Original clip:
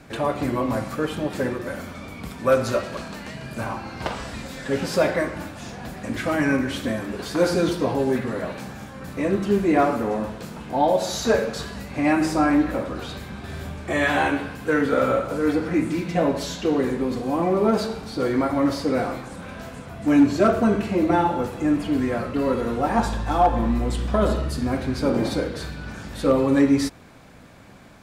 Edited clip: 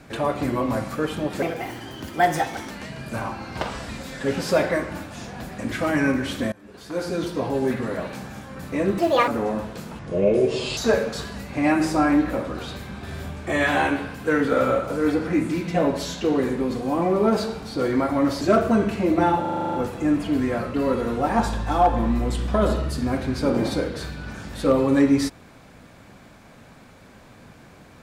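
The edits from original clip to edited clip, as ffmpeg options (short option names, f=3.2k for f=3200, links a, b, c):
-filter_complex "[0:a]asplit=17[a][b][c][d][e][f][g][h][i][j][k][l][m][n][o][p][q];[a]atrim=end=1.424[r];[b]atrim=start=1.42:end=3.15,asetpts=PTS-STARTPTS,asetrate=59535,aresample=44100,atrim=end_sample=56513,asetpts=PTS-STARTPTS[s];[c]atrim=start=3.146:end=6.97,asetpts=PTS-STARTPTS,afade=t=out:st=3.82:d=0.004:c=hsin:silence=0.0668344[t];[d]atrim=start=6.97:end=9.434,asetpts=PTS-STARTPTS,afade=t=in:d=1.27:silence=0.0668344[u];[e]atrim=start=9.43:end=9.93,asetpts=PTS-STARTPTS,asetrate=74088,aresample=44100[v];[f]atrim=start=9.926:end=10.644[w];[g]atrim=start=10.64:end=11.18,asetpts=PTS-STARTPTS,asetrate=30429,aresample=44100,atrim=end_sample=34513,asetpts=PTS-STARTPTS[x];[h]atrim=start=11.176:end=18.822[y];[i]atrim=start=20.328:end=21.372[z];[j]atrim=start=21.328:end=21.372[aa];[k]atrim=start=21.328:end=21.372[ab];[l]atrim=start=21.328:end=21.372[ac];[m]atrim=start=21.328:end=21.372[ad];[n]atrim=start=21.328:end=21.372[ae];[o]atrim=start=21.328:end=21.372[af];[p]atrim=start=21.328:end=21.372[ag];[q]atrim=start=21.328[ah];[r][s]acrossfade=d=0.004:c1=hsin:c2=hsin[ai];[t][u]concat=n=2:v=0:a=1[aj];[ai][aj]acrossfade=d=0.004:c1=hsin:c2=hsin[ak];[ak][v]acrossfade=d=0.004:c1=hsin:c2=hsin[al];[al][w]acrossfade=d=0.004:c1=hsin:c2=hsin[am];[am][x]acrossfade=d=0.004:c1=hsin:c2=hsin[an];[an][y]acrossfade=d=0.004:c1=hsin:c2=hsin[ao];[ao][z]acrossfade=d=0.004:c1=hsin:c2=hsin[ap];[ap][aa]acrossfade=d=0.004:c1=hsin:c2=hsin[aq];[aq][ab]acrossfade=d=0.004:c1=hsin:c2=hsin[ar];[ar][ac]acrossfade=d=0.004:c1=hsin:c2=hsin[as];[as][ad]acrossfade=d=0.004:c1=hsin:c2=hsin[at];[at][ae]acrossfade=d=0.004:c1=hsin:c2=hsin[au];[au][af]acrossfade=d=0.004:c1=hsin:c2=hsin[av];[av][ag]acrossfade=d=0.004:c1=hsin:c2=hsin[aw];[aw][ah]acrossfade=d=0.004:c1=hsin:c2=hsin"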